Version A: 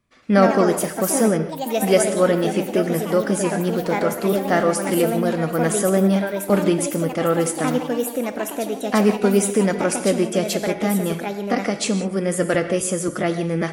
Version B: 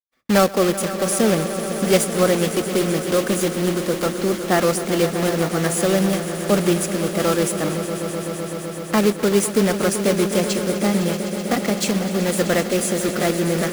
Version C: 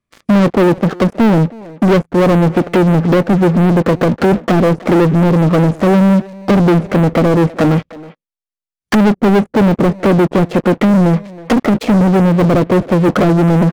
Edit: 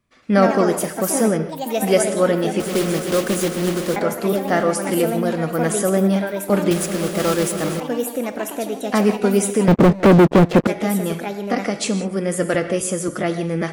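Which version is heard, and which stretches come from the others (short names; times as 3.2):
A
2.6–3.96 from B
6.71–7.8 from B
9.68–10.67 from C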